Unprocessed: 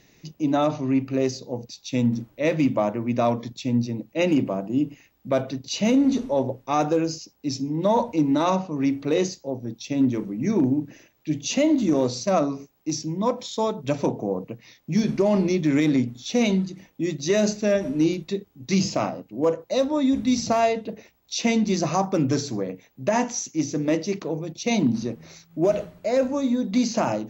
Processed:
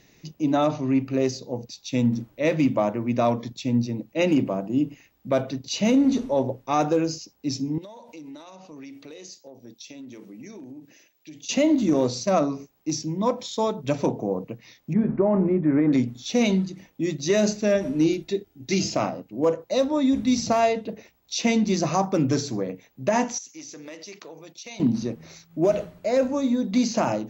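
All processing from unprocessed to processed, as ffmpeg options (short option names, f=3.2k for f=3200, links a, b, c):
-filter_complex "[0:a]asettb=1/sr,asplit=3[a][b][c];[a]atrim=end=7.784[d];[b]atrim=start=7.78:end=11.49,asetpts=PTS-STARTPTS,afade=t=in:d=0.004:c=qsin,afade=t=out:st=3.706:d=0.004:c=qsin,highpass=f=900:p=1,acompressor=threshold=-36dB:ratio=16:attack=3.2:release=140:knee=1:detection=peak,equalizer=f=1.2k:t=o:w=1.8:g=-7[e];[c]atrim=start=11.486[f];[d][e]acrossfade=d=0.004:c1=hsin:c2=qsin[g];[g][f]acrossfade=d=0.004:c1=qsin:c2=hsin,asettb=1/sr,asplit=3[h][i][j];[h]atrim=end=14.934[k];[i]atrim=start=14.93:end=15.93,asetpts=PTS-STARTPTS,afade=t=in:d=0.004:c=qsin,afade=t=out:st=0.996:d=0.004:c=qsin,lowpass=f=1.6k:w=0.5412,lowpass=f=1.6k:w=1.3066,asplit=2[l][m];[m]adelay=17,volume=-14dB[n];[l][n]amix=inputs=2:normalize=0,atrim=end_sample=44100[o];[j]atrim=start=15.926[p];[k][o]acrossfade=d=0.004:c1=hsin:c2=qsin[q];[q][p]acrossfade=d=0.004:c1=qsin:c2=hsin,asettb=1/sr,asplit=3[r][s][t];[r]atrim=end=18.084[u];[s]atrim=start=18.08:end=18.95,asetpts=PTS-STARTPTS,afade=t=in:d=0.004:c=qsin,afade=t=out:st=0.866:d=0.004:c=qsin,asuperstop=centerf=1100:order=4:qfactor=4.8,aecho=1:1:2.9:0.43,atrim=end_sample=38367[v];[t]atrim=start=18.946[w];[u][v]acrossfade=d=0.004:c1=hsin:c2=qsin[x];[x][w]acrossfade=d=0.004:c1=qsin:c2=hsin,asettb=1/sr,asplit=3[y][z][aa];[y]atrim=end=23.384[ab];[z]atrim=start=23.38:end=24.8,asetpts=PTS-STARTPTS,afade=t=in:d=0.004:c=qsin,afade=t=out:st=1.416:d=0.004:c=qsin,highpass=f=1.4k:p=1,acompressor=threshold=-37dB:ratio=4:attack=3.2:release=140:knee=1:detection=peak[ac];[aa]atrim=start=24.796[ad];[ab][ac]acrossfade=d=0.004:c1=hsin:c2=qsin[ae];[ae][ad]acrossfade=d=0.004:c1=qsin:c2=hsin"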